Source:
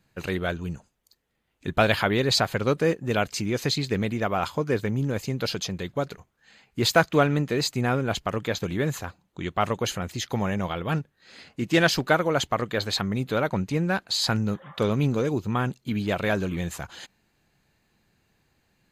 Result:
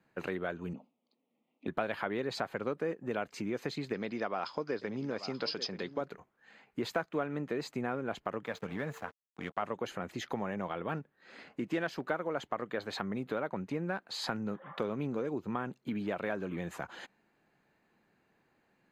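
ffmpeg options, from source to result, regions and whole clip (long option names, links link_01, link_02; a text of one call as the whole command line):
ffmpeg -i in.wav -filter_complex "[0:a]asettb=1/sr,asplit=3[link_01][link_02][link_03];[link_01]atrim=end=0.734[link_04];[link_02]atrim=start=0.73:end=1.67,asetpts=PTS-STARTPTS,afade=type=in:duration=0.004:curve=qsin,afade=type=out:start_time=0.936:duration=0.004:curve=qsin,asuperstop=centerf=1600:order=4:qfactor=1.3,highpass=frequency=160:width=0.5412,highpass=frequency=160:width=1.3066,equalizer=frequency=250:width_type=q:width=4:gain=10,equalizer=frequency=380:width_type=q:width=4:gain=-5,equalizer=frequency=990:width_type=q:width=4:gain=-5,lowpass=frequency=3900:width=0.5412,lowpass=frequency=3900:width=1.3066[link_05];[link_03]atrim=start=1.666[link_06];[link_04][link_05]acrossfade=duration=0.004:curve1=hsin:curve2=qsin[link_07];[link_07][link_06]acrossfade=duration=0.004:curve1=qsin:curve2=hsin,asettb=1/sr,asplit=3[link_08][link_09][link_10];[link_08]atrim=end=3.934[link_11];[link_09]atrim=start=3.93:end=6.01,asetpts=PTS-STARTPTS,afade=type=in:duration=0.004:curve=qsin,afade=type=out:start_time=2.076:duration=0.004:curve=qsin,lowpass=frequency=5000:width_type=q:width=11,lowshelf=frequency=110:gain=-11.5,aecho=1:1:884:0.141,atrim=end_sample=91728[link_12];[link_10]atrim=start=6.006[link_13];[link_11][link_12]acrossfade=duration=0.004:curve1=hsin:curve2=qsin[link_14];[link_14][link_13]acrossfade=duration=0.004:curve1=qsin:curve2=hsin,asettb=1/sr,asplit=3[link_15][link_16][link_17];[link_15]atrim=end=8.464[link_18];[link_16]atrim=start=8.46:end=9.62,asetpts=PTS-STARTPTS,afade=type=in:duration=0.004:curve=qsin,afade=type=out:start_time=1.156:duration=0.004:curve=qsin,equalizer=frequency=360:width_type=o:width=0.58:gain=-12.5,aeval=exprs='val(0)+0.00501*sin(2*PI*450*n/s)':channel_layout=same,aeval=exprs='sgn(val(0))*max(abs(val(0))-0.00794,0)':channel_layout=same[link_19];[link_17]atrim=start=9.616[link_20];[link_18][link_19]acrossfade=duration=0.004:curve1=hsin:curve2=qsin[link_21];[link_21][link_20]acrossfade=duration=0.004:curve1=qsin:curve2=hsin,acrossover=split=180 2300:gain=0.141 1 0.2[link_22][link_23][link_24];[link_22][link_23][link_24]amix=inputs=3:normalize=0,acompressor=threshold=-34dB:ratio=3" out.wav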